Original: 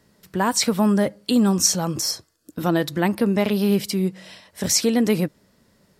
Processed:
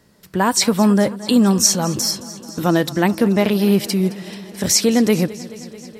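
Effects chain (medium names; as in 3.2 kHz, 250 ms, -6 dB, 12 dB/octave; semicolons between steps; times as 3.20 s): modulated delay 217 ms, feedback 76%, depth 51 cents, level -18.5 dB; trim +4 dB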